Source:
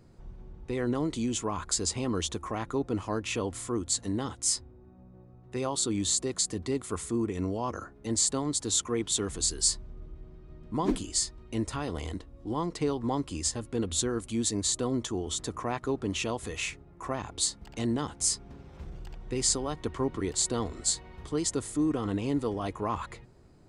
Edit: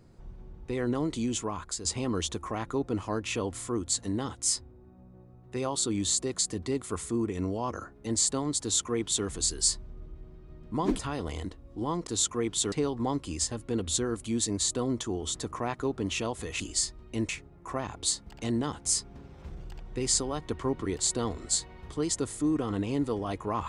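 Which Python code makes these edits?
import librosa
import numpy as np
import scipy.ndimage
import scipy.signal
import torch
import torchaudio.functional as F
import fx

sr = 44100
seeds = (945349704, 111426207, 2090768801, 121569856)

y = fx.edit(x, sr, fx.fade_out_to(start_s=1.36, length_s=0.49, floor_db=-9.0),
    fx.duplicate(start_s=8.61, length_s=0.65, to_s=12.76),
    fx.move(start_s=10.99, length_s=0.69, to_s=16.64), tone=tone)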